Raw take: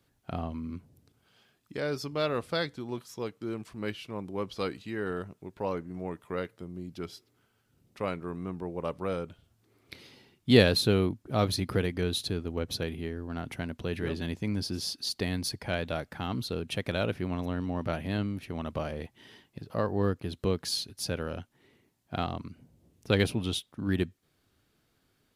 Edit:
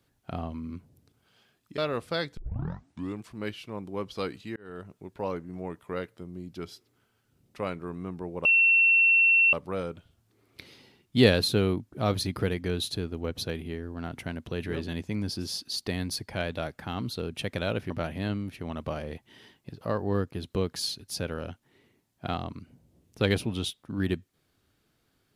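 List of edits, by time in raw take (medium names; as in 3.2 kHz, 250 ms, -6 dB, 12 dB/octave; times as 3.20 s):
1.78–2.19 s: delete
2.78 s: tape start 0.84 s
4.97–5.37 s: fade in
8.86 s: add tone 2.71 kHz -17 dBFS 1.08 s
17.23–17.79 s: delete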